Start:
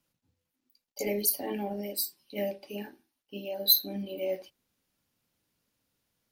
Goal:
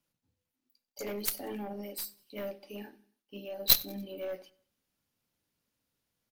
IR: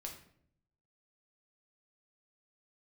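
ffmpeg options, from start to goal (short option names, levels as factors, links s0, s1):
-filter_complex "[0:a]aeval=exprs='0.447*(cos(1*acos(clip(val(0)/0.447,-1,1)))-cos(1*PI/2))+0.178*(cos(2*acos(clip(val(0)/0.447,-1,1)))-cos(2*PI/2))+0.0224*(cos(3*acos(clip(val(0)/0.447,-1,1)))-cos(3*PI/2))+0.0251*(cos(4*acos(clip(val(0)/0.447,-1,1)))-cos(4*PI/2))+0.0891*(cos(7*acos(clip(val(0)/0.447,-1,1)))-cos(7*PI/2))':c=same,aecho=1:1:94|188|282:0.0631|0.0265|0.0111,asplit=2[s0][s1];[1:a]atrim=start_sample=2205,afade=t=out:st=0.43:d=0.01,atrim=end_sample=19404,asetrate=57330,aresample=44100[s2];[s1][s2]afir=irnorm=-1:irlink=0,volume=0.335[s3];[s0][s3]amix=inputs=2:normalize=0"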